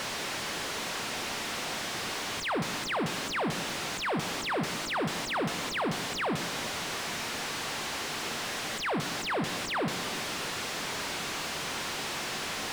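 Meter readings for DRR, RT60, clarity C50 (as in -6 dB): 8.5 dB, 2.0 s, 10.0 dB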